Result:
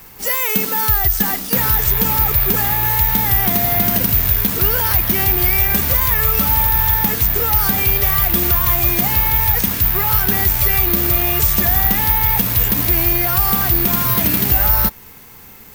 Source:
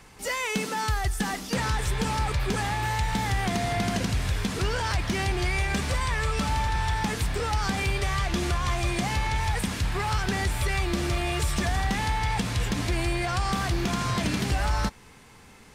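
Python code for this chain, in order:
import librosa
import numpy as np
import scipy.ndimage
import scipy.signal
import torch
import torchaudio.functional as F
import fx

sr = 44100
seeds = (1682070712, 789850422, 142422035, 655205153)

y = (np.kron(x[::3], np.eye(3)[0]) * 3)[:len(x)]
y = y * librosa.db_to_amplitude(6.0)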